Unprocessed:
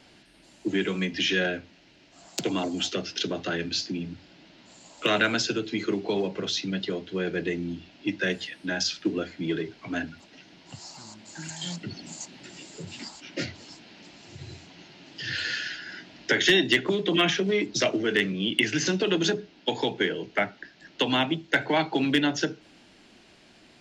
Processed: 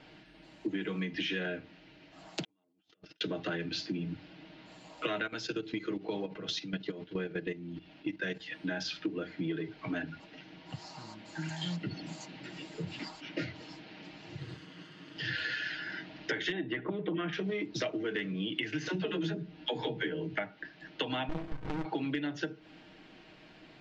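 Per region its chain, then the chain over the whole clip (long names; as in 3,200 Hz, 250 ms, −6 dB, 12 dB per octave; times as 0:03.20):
0:02.44–0:03.21: compressor whose output falls as the input rises −40 dBFS + noise gate −32 dBFS, range −36 dB
0:05.27–0:08.52: dynamic equaliser 6,300 Hz, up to +7 dB, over −45 dBFS, Q 1.1 + output level in coarse steps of 14 dB
0:14.39–0:15.17: lower of the sound and its delayed copy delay 0.63 ms + high-pass filter 120 Hz
0:16.52–0:17.33: low-pass filter 1,800 Hz + bad sample-rate conversion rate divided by 4×, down none, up filtered
0:18.88–0:20.38: low-shelf EQ 160 Hz +10 dB + double-tracking delay 13 ms −6 dB + all-pass dispersion lows, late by 70 ms, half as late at 310 Hz
0:21.29–0:21.85: variable-slope delta modulation 64 kbit/s + mid-hump overdrive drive 33 dB, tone 4,500 Hz, clips at −11 dBFS + windowed peak hold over 65 samples
whole clip: low-pass filter 3,200 Hz 12 dB per octave; comb filter 6.4 ms, depth 50%; downward compressor 6 to 1, threshold −32 dBFS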